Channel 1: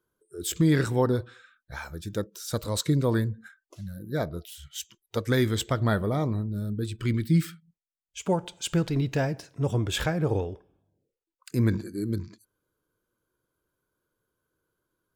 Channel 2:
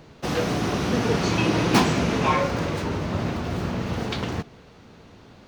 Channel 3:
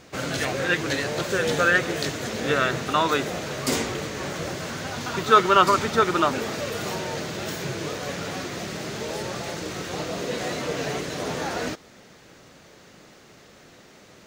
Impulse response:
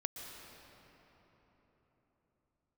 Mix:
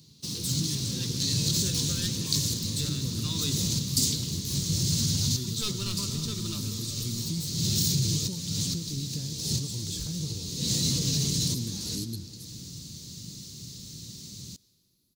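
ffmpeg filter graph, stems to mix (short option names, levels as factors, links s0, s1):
-filter_complex "[0:a]acrossover=split=280|1400[s0][s1][s2];[s0]acompressor=threshold=0.0178:ratio=4[s3];[s1]acompressor=threshold=0.0158:ratio=4[s4];[s2]acompressor=threshold=0.00355:ratio=4[s5];[s3][s4][s5]amix=inputs=3:normalize=0,volume=0.794,asplit=3[s6][s7][s8];[s6]atrim=end=4.71,asetpts=PTS-STARTPTS,afade=t=out:st=4.706:d=0.004:c=hsin[s9];[s7]atrim=start=4.71:end=5.36,asetpts=PTS-STARTPTS,volume=0[s10];[s8]atrim=start=5.36,asetpts=PTS-STARTPTS,afade=t=in:d=0.004:c=hsin[s11];[s9][s10][s11]concat=n=3:v=0:a=1,asplit=3[s12][s13][s14];[s13]volume=0.299[s15];[1:a]highpass=f=400:p=1,acompressor=threshold=0.0398:ratio=3,volume=0.355,asplit=2[s16][s17];[s17]volume=0.398[s18];[2:a]aeval=exprs='clip(val(0),-1,0.133)':c=same,adelay=300,volume=1.06,asplit=2[s19][s20];[s20]volume=0.2[s21];[s14]apad=whole_len=642190[s22];[s19][s22]sidechaincompress=threshold=0.00224:ratio=5:attack=27:release=208[s23];[s16][s23]amix=inputs=2:normalize=0,equalizer=f=110:t=o:w=2.3:g=14.5,alimiter=limit=0.112:level=0:latency=1:release=54,volume=1[s24];[3:a]atrim=start_sample=2205[s25];[s15][s18][s21]amix=inputs=3:normalize=0[s26];[s26][s25]afir=irnorm=-1:irlink=0[s27];[s12][s24][s27]amix=inputs=3:normalize=0,firequalizer=gain_entry='entry(170,0);entry(690,-27);entry(1000,-17);entry(1500,-22);entry(4100,12)':delay=0.05:min_phase=1"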